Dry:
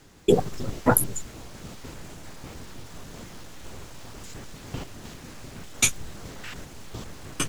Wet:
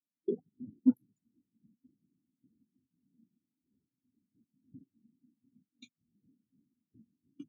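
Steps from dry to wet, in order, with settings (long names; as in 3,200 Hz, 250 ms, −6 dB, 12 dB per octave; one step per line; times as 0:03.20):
adaptive Wiener filter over 41 samples
high-pass filter 92 Hz 12 dB per octave
downward compressor 3 to 1, threshold −29 dBFS, peak gain reduction 12 dB
octave-band graphic EQ 250/4,000/8,000 Hz +11/+9/−6 dB
every bin expanded away from the loudest bin 2.5 to 1
level −4.5 dB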